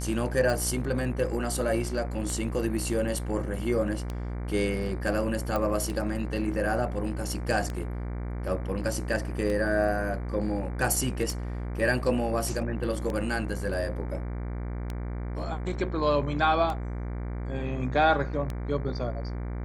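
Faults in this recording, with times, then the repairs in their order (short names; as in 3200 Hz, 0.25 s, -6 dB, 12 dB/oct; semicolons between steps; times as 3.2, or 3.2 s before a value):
buzz 60 Hz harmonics 39 -33 dBFS
tick 33 1/3 rpm
5.56 pop -16 dBFS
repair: de-click; de-hum 60 Hz, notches 39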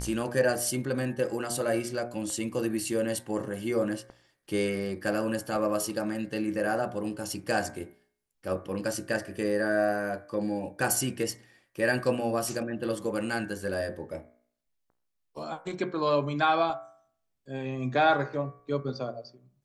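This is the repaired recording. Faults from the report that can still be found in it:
none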